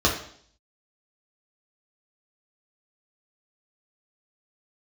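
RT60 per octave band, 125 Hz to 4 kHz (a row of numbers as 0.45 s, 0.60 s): 0.60 s, 0.65 s, 0.60 s, 0.55 s, 0.55 s, 0.65 s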